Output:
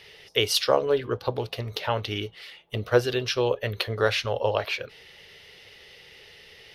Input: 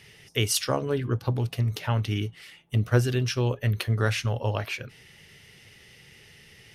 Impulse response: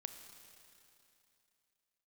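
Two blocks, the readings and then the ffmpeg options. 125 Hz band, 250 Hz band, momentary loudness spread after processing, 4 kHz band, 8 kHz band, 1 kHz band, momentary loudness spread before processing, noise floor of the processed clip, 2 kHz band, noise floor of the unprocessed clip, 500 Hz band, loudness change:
-9.0 dB, -3.0 dB, 11 LU, +5.0 dB, -3.5 dB, +4.5 dB, 8 LU, -51 dBFS, +2.5 dB, -54 dBFS, +6.0 dB, +1.0 dB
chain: -af "equalizer=f=125:t=o:w=1:g=-9,equalizer=f=250:t=o:w=1:g=-6,equalizer=f=500:t=o:w=1:g=9,equalizer=f=1k:t=o:w=1:g=3,equalizer=f=4k:t=o:w=1:g=9,equalizer=f=8k:t=o:w=1:g=-9"

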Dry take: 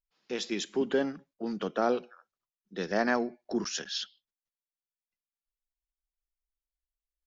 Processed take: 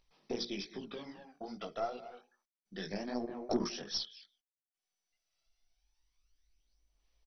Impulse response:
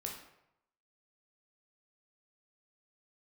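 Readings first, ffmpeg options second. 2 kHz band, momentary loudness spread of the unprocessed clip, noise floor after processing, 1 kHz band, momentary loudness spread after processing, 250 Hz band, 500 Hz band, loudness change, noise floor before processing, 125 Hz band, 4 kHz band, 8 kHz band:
-14.0 dB, 10 LU, under -85 dBFS, -8.5 dB, 15 LU, -7.5 dB, -9.5 dB, -8.0 dB, under -85 dBFS, -4.5 dB, -4.0 dB, n/a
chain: -filter_complex "[0:a]agate=range=-33dB:threshold=-48dB:ratio=3:detection=peak,acompressor=mode=upward:threshold=-48dB:ratio=2.5,highshelf=f=6.3k:g=11.5,asplit=2[a][b];[b]adelay=200,highpass=300,lowpass=3.4k,asoftclip=type=hard:threshold=-22.5dB,volume=-17dB[c];[a][c]amix=inputs=2:normalize=0,acompressor=threshold=-38dB:ratio=4,aphaser=in_gain=1:out_gain=1:delay=1.5:decay=0.7:speed=0.28:type=sinusoidal,equalizer=f=1.5k:w=5.8:g=-11,bandreject=f=60:t=h:w=6,bandreject=f=120:t=h:w=6,bandreject=f=180:t=h:w=6,bandreject=f=240:t=h:w=6,bandreject=f=300:t=h:w=6,bandreject=f=360:t=h:w=6,bandreject=f=420:t=h:w=6,bandreject=f=480:t=h:w=6,flanger=delay=16:depth=4.9:speed=2.5,aeval=exprs='0.0708*(cos(1*acos(clip(val(0)/0.0708,-1,1)))-cos(1*PI/2))+0.00562*(cos(4*acos(clip(val(0)/0.0708,-1,1)))-cos(4*PI/2))':c=same,volume=1.5dB" -ar 24000 -c:a mp2 -b:a 32k

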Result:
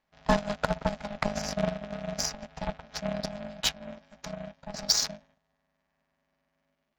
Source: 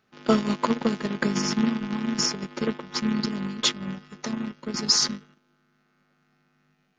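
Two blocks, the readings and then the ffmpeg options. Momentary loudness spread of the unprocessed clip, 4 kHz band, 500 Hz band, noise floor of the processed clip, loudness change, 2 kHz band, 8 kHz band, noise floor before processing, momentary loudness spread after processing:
11 LU, -5.5 dB, -2.0 dB, -79 dBFS, -5.5 dB, -4.0 dB, -4.0 dB, -69 dBFS, 16 LU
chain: -af "aeval=exprs='0.501*(cos(1*acos(clip(val(0)/0.501,-1,1)))-cos(1*PI/2))+0.0398*(cos(7*acos(clip(val(0)/0.501,-1,1)))-cos(7*PI/2))':c=same,aeval=exprs='val(0)*sin(2*PI*410*n/s)':c=same"

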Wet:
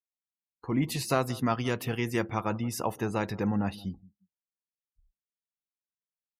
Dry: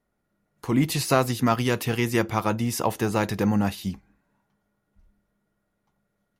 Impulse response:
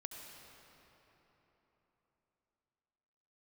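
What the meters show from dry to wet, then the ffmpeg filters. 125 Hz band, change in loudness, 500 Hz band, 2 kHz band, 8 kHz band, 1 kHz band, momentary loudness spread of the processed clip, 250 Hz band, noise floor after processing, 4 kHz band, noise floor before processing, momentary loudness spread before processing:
-6.0 dB, -6.0 dB, -6.0 dB, -6.5 dB, -7.5 dB, -6.0 dB, 8 LU, -6.0 dB, under -85 dBFS, -7.0 dB, -76 dBFS, 8 LU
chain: -filter_complex "[0:a]asplit=2[a][b];[b]adelay=174,lowpass=f=2k:p=1,volume=-20dB,asplit=2[c][d];[d]adelay=174,lowpass=f=2k:p=1,volume=0.31[e];[a][c][e]amix=inputs=3:normalize=0,afftdn=nr=36:nf=-41,volume=-6dB"

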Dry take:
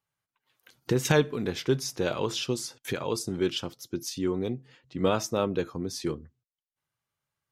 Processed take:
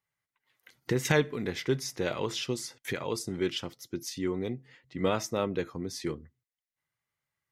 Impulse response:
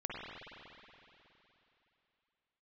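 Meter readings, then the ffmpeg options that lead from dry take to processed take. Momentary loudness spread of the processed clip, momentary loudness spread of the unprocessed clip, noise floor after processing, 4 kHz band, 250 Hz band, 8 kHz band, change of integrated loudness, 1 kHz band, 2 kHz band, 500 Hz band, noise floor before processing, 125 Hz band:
11 LU, 11 LU, under -85 dBFS, -2.5 dB, -3.0 dB, -3.0 dB, -2.5 dB, -2.5 dB, 0.0 dB, -3.0 dB, under -85 dBFS, -3.0 dB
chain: -af "equalizer=f=2k:t=o:w=0.26:g=11,volume=-3dB"

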